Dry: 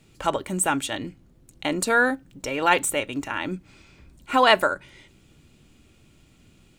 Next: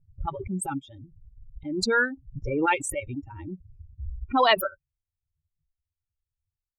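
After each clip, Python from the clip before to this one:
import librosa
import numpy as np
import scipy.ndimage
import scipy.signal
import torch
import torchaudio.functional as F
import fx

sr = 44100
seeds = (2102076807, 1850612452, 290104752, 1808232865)

y = fx.bin_expand(x, sr, power=3.0)
y = fx.env_lowpass(y, sr, base_hz=410.0, full_db=-20.0)
y = fx.pre_swell(y, sr, db_per_s=38.0)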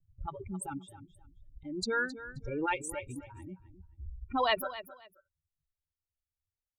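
y = fx.vibrato(x, sr, rate_hz=0.43, depth_cents=13.0)
y = fx.echo_feedback(y, sr, ms=265, feedback_pct=21, wet_db=-14.5)
y = y * 10.0 ** (-8.5 / 20.0)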